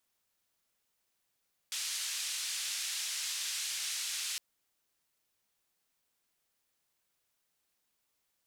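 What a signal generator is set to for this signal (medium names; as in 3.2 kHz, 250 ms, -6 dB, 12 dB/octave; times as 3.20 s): noise band 2.5–7.8 kHz, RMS -37 dBFS 2.66 s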